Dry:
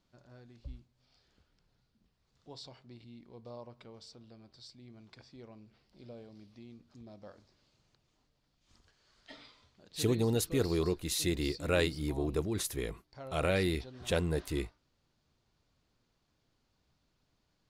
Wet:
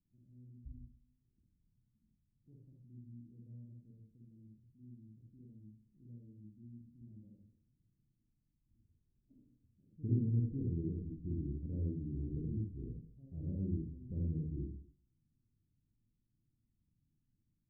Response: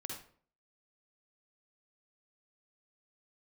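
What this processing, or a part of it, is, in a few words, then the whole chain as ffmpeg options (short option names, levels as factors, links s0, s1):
next room: -filter_complex "[0:a]lowpass=f=250:w=0.5412,lowpass=f=250:w=1.3066[s0];[1:a]atrim=start_sample=2205[s1];[s0][s1]afir=irnorm=-1:irlink=0,volume=0.891"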